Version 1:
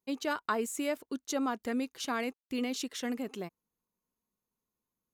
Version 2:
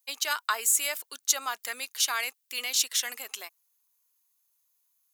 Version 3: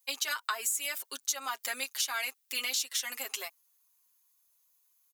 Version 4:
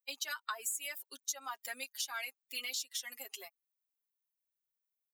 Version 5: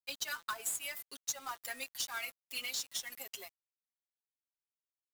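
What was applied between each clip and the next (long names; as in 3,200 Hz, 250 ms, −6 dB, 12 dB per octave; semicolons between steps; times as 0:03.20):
high-pass filter 800 Hz 12 dB per octave; spectral tilt +4.5 dB per octave; level +3.5 dB
comb filter 7.4 ms, depth 83%; downward compressor 6 to 1, threshold −29 dBFS, peak gain reduction 12.5 dB
spectral dynamics exaggerated over time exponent 1.5; level −4.5 dB
hum removal 169.9 Hz, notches 12; log-companded quantiser 4 bits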